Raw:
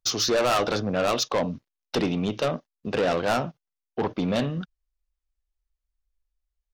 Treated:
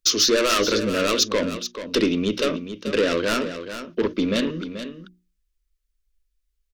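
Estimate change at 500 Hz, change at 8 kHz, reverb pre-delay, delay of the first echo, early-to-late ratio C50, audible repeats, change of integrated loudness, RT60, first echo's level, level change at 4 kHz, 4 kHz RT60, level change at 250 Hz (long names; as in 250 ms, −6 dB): +3.0 dB, +7.0 dB, no reverb audible, 433 ms, no reverb audible, 1, +3.5 dB, no reverb audible, −10.5 dB, +7.0 dB, no reverb audible, +4.5 dB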